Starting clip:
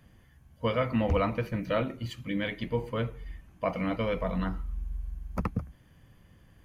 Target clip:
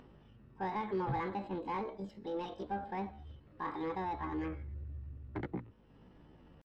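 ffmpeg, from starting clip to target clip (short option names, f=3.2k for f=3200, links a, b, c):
-filter_complex "[0:a]asetrate=74167,aresample=44100,atempo=0.594604,aeval=exprs='val(0)+0.00126*(sin(2*PI*50*n/s)+sin(2*PI*2*50*n/s)/2+sin(2*PI*3*50*n/s)/3+sin(2*PI*4*50*n/s)/4+sin(2*PI*5*50*n/s)/5)':c=same,asplit=2[a][b];[b]highpass=f=720:p=1,volume=10dB,asoftclip=type=tanh:threshold=-26.5dB[c];[a][c]amix=inputs=2:normalize=0,lowpass=f=1.3k:p=1,volume=-6dB,lowpass=f=1.7k:p=1,acompressor=mode=upward:threshold=-47dB:ratio=2.5,volume=-4.5dB"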